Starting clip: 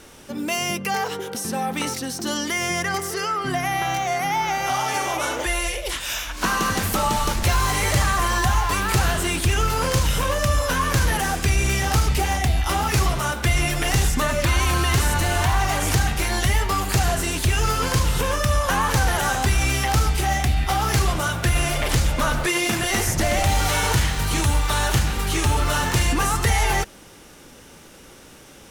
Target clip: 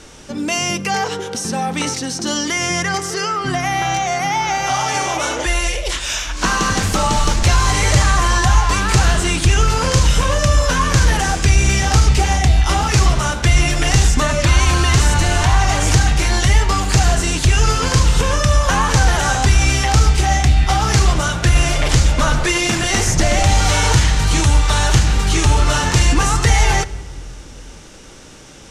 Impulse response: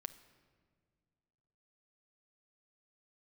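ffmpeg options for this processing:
-filter_complex "[0:a]lowpass=f=7k:t=q:w=1.5,asplit=2[a][b];[1:a]atrim=start_sample=2205,lowshelf=f=120:g=8.5[c];[b][c]afir=irnorm=-1:irlink=0,volume=8dB[d];[a][d]amix=inputs=2:normalize=0,volume=-4.5dB"

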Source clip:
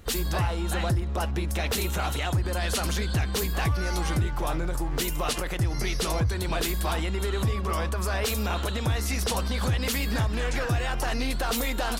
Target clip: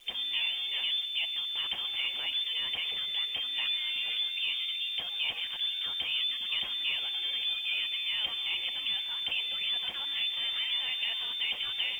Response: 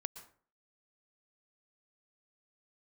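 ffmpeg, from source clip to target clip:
-filter_complex "[0:a]asplit=2[a][b];[b]acrossover=split=230 2000:gain=0.2 1 0.0794[c][d][e];[c][d][e]amix=inputs=3:normalize=0[f];[1:a]atrim=start_sample=2205,highshelf=f=9.6k:g=6.5[g];[f][g]afir=irnorm=-1:irlink=0,volume=4.5dB[h];[a][h]amix=inputs=2:normalize=0,lowpass=f=3.1k:t=q:w=0.5098,lowpass=f=3.1k:t=q:w=0.6013,lowpass=f=3.1k:t=q:w=0.9,lowpass=f=3.1k:t=q:w=2.563,afreqshift=-3600,acrusher=bits=9:dc=4:mix=0:aa=0.000001,volume=-8.5dB"

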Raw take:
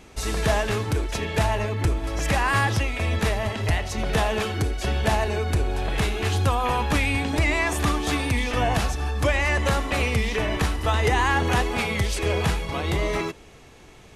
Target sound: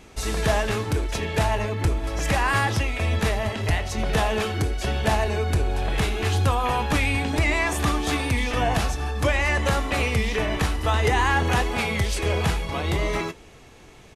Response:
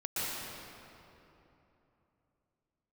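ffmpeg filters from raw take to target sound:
-filter_complex "[0:a]asplit=2[a][b];[b]adelay=23,volume=-13.5dB[c];[a][c]amix=inputs=2:normalize=0"

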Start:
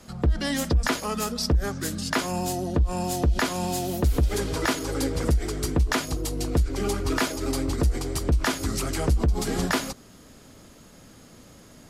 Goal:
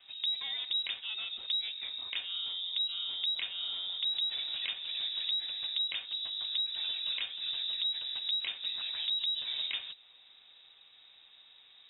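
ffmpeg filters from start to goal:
-filter_complex "[0:a]lowpass=f=3.3k:t=q:w=0.5098,lowpass=f=3.3k:t=q:w=0.6013,lowpass=f=3.3k:t=q:w=0.9,lowpass=f=3.3k:t=q:w=2.563,afreqshift=-3900,acrossover=split=590|2400[a][b][c];[a]acompressor=threshold=-55dB:ratio=4[d];[b]acompressor=threshold=-43dB:ratio=4[e];[c]acompressor=threshold=-22dB:ratio=4[f];[d][e][f]amix=inputs=3:normalize=0,volume=-8.5dB"

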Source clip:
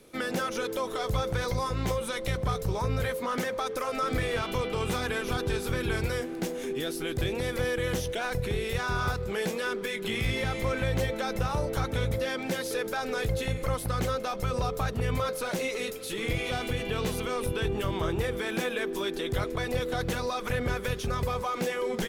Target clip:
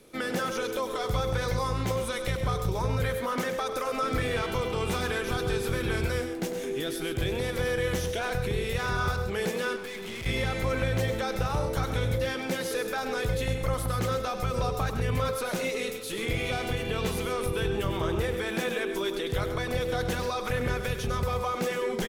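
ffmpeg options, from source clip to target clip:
-filter_complex "[0:a]aecho=1:1:99.13|134.1:0.316|0.282,asettb=1/sr,asplit=3[a][b][c];[a]atrim=end=9.764[d];[b]atrim=start=9.76:end=10.26,asetpts=PTS-STARTPTS,afade=t=in:d=0.004:c=qsin,afade=t=out:st=0.496:d=0.004:c=qsin,aeval=exprs='(tanh(56.2*val(0)+0.3)-tanh(0.3))/56.2':c=same[e];[c]atrim=start=10.256[f];[d][e]acrossfade=d=0.004:c1=hsin:c2=qsin[g];[g][f]acrossfade=d=0.004:c1=qsin:c2=hsin"

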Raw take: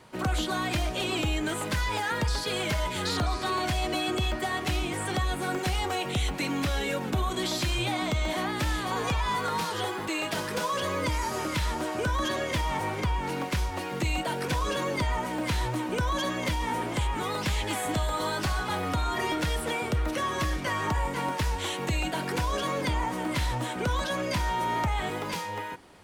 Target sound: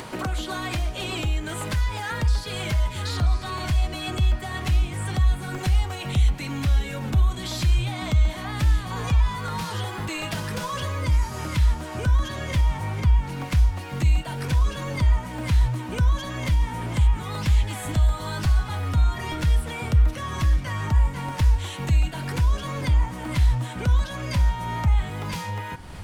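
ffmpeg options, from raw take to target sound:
-af "bandreject=f=184.3:t=h:w=4,bandreject=f=368.6:t=h:w=4,bandreject=f=552.9:t=h:w=4,bandreject=f=737.2:t=h:w=4,bandreject=f=921.5:t=h:w=4,bandreject=f=1.1058k:t=h:w=4,bandreject=f=1.2901k:t=h:w=4,bandreject=f=1.4744k:t=h:w=4,bandreject=f=1.6587k:t=h:w=4,bandreject=f=1.843k:t=h:w=4,bandreject=f=2.0273k:t=h:w=4,bandreject=f=2.2116k:t=h:w=4,bandreject=f=2.3959k:t=h:w=4,bandreject=f=2.5802k:t=h:w=4,bandreject=f=2.7645k:t=h:w=4,bandreject=f=2.9488k:t=h:w=4,bandreject=f=3.1331k:t=h:w=4,bandreject=f=3.3174k:t=h:w=4,bandreject=f=3.5017k:t=h:w=4,bandreject=f=3.686k:t=h:w=4,bandreject=f=3.8703k:t=h:w=4,bandreject=f=4.0546k:t=h:w=4,bandreject=f=4.2389k:t=h:w=4,bandreject=f=4.4232k:t=h:w=4,bandreject=f=4.6075k:t=h:w=4,bandreject=f=4.7918k:t=h:w=4,bandreject=f=4.9761k:t=h:w=4,bandreject=f=5.1604k:t=h:w=4,bandreject=f=5.3447k:t=h:w=4,bandreject=f=5.529k:t=h:w=4,bandreject=f=5.7133k:t=h:w=4,bandreject=f=5.8976k:t=h:w=4,asubboost=boost=7:cutoff=130,acompressor=mode=upward:threshold=-19dB:ratio=2.5,volume=-3.5dB"

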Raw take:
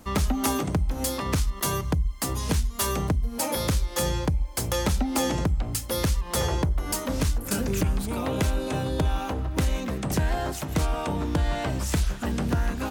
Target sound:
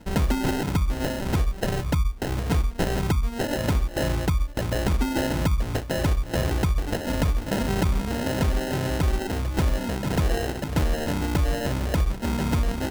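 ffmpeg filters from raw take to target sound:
-filter_complex "[0:a]acrossover=split=240|3000[a][b][c];[b]acompressor=threshold=-26dB:ratio=6[d];[a][d][c]amix=inputs=3:normalize=0,acrusher=samples=38:mix=1:aa=0.000001,volume=2dB"

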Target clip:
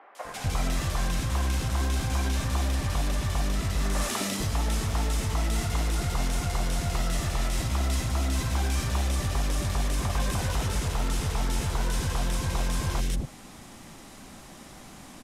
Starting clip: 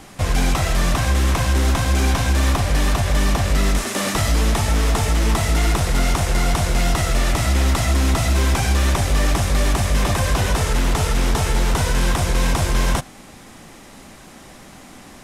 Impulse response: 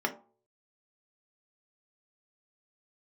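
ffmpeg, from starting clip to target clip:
-filter_complex "[0:a]acompressor=threshold=-20dB:ratio=6,acrossover=split=480|1900[a][b][c];[c]adelay=150[d];[a]adelay=250[e];[e][b][d]amix=inputs=3:normalize=0,volume=-3.5dB"

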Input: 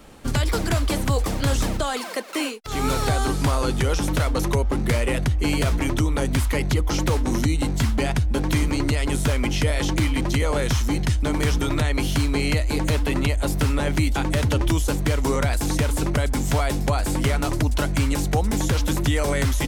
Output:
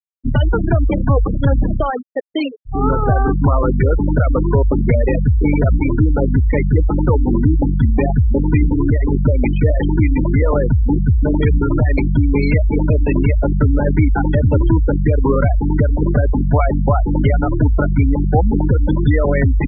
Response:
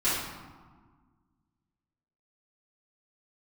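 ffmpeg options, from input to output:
-af "aeval=exprs='0.299*(cos(1*acos(clip(val(0)/0.299,-1,1)))-cos(1*PI/2))+0.0119*(cos(4*acos(clip(val(0)/0.299,-1,1)))-cos(4*PI/2))':c=same,anlmdn=100,afftfilt=real='re*gte(hypot(re,im),0.141)':imag='im*gte(hypot(re,im),0.141)':win_size=1024:overlap=0.75,volume=8dB"

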